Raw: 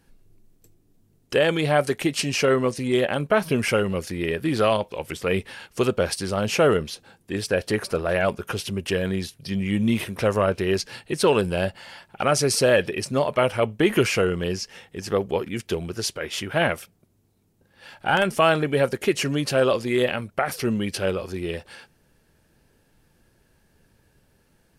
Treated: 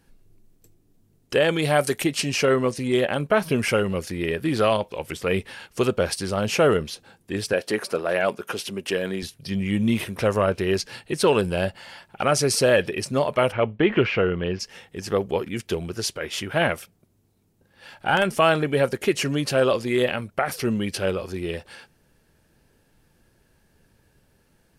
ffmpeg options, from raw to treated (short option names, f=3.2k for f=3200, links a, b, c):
-filter_complex "[0:a]asettb=1/sr,asplit=3[a][b][c];[a]atrim=end=1.624[d];[b]atrim=start=1.62:end=2.04,asetpts=PTS-STARTPTS,afade=t=in:d=0.004:c=qsin,afade=t=out:st=0.416:d=0.004:c=qsin,aemphasis=mode=production:type=cd[e];[c]atrim=start=2.036[f];[d][e]acrossfade=d=0.004:c1=hsin:c2=qsin[g];[g][f]acrossfade=d=0.004:c1=qsin:c2=hsin,asettb=1/sr,asplit=3[h][i][j];[h]atrim=end=7.534[k];[i]atrim=start=7.53:end=9.23,asetpts=PTS-STARTPTS,afade=t=in:d=0.004:c=qsin,afade=t=out:st=1.696:d=0.004:c=qsin,highpass=220[l];[j]atrim=start=9.226[m];[k][l]acrossfade=d=0.004:c1=hsin:c2=qsin[n];[n][m]acrossfade=d=0.004:c1=qsin:c2=hsin,asplit=3[o][p][q];[o]afade=t=out:st=13.51:d=0.02[r];[p]lowpass=f=3.3k:w=0.5412,lowpass=f=3.3k:w=1.3066,afade=t=in:st=13.51:d=0.02,afade=t=out:st=14.59:d=0.02[s];[q]afade=t=in:st=14.59:d=0.02[t];[r][s][t]amix=inputs=3:normalize=0"